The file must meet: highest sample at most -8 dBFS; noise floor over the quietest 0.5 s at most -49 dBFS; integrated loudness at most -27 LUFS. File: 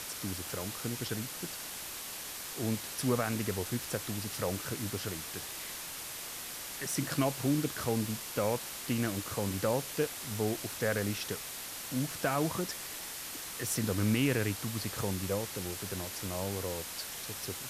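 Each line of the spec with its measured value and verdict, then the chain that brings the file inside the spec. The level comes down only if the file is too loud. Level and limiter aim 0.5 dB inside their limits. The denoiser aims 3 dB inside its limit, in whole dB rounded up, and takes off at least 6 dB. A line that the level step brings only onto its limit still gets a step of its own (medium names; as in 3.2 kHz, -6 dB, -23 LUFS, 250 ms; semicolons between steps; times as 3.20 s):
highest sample -17.0 dBFS: pass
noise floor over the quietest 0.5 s -42 dBFS: fail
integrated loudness -34.5 LUFS: pass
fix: noise reduction 10 dB, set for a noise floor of -42 dBFS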